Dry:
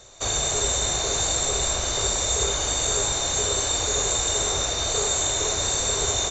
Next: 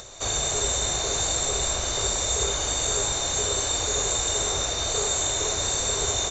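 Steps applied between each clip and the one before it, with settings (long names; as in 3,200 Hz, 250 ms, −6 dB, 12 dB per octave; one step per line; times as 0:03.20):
upward compression, threshold −34 dBFS
level −1.5 dB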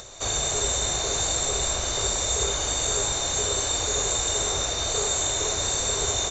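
no processing that can be heard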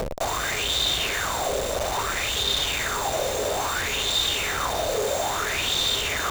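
brickwall limiter −23.5 dBFS, peak gain reduction 11 dB
comparator with hysteresis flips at −36.5 dBFS
auto-filter bell 0.6 Hz 510–3,700 Hz +15 dB
level +2.5 dB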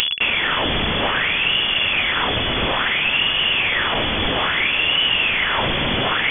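bad sample-rate conversion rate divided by 6×, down none, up zero stuff
voice inversion scrambler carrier 3,400 Hz
level +7 dB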